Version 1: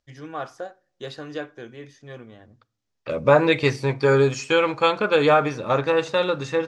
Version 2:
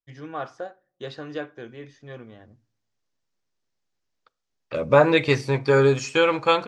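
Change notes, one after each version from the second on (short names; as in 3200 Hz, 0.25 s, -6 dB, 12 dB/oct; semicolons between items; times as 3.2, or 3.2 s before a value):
first voice: add air absorption 85 m; second voice: entry +1.65 s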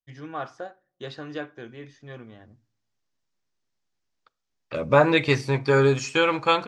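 master: add bell 500 Hz -3.5 dB 0.58 oct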